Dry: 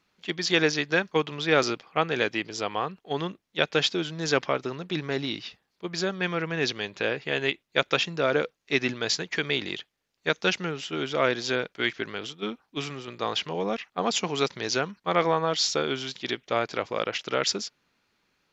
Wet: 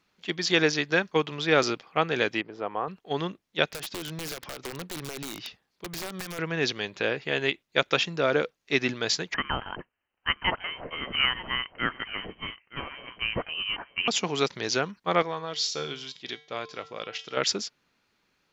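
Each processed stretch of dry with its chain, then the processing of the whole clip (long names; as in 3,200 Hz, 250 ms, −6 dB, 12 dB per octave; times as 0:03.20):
0:02.41–0:02.88: low-pass filter 1,300 Hz + low-shelf EQ 170 Hz −9.5 dB
0:03.69–0:06.39: downward compressor 16 to 1, threshold −30 dBFS + wrap-around overflow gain 28.5 dB
0:09.34–0:14.08: high-pass filter 490 Hz 24 dB per octave + single-tap delay 921 ms −15 dB + voice inversion scrambler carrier 3,500 Hz
0:15.22–0:17.37: dynamic equaliser 4,300 Hz, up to +7 dB, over −40 dBFS, Q 0.72 + tuned comb filter 150 Hz, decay 0.46 s, harmonics odd, mix 70%
whole clip: no processing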